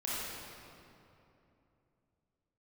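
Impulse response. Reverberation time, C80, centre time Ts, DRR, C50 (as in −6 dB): 2.9 s, −2.5 dB, 174 ms, −8.5 dB, −5.0 dB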